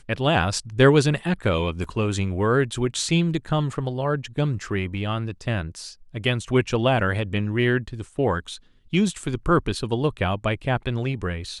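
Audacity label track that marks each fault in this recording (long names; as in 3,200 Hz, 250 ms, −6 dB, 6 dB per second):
1.840000	1.840000	drop-out 2.9 ms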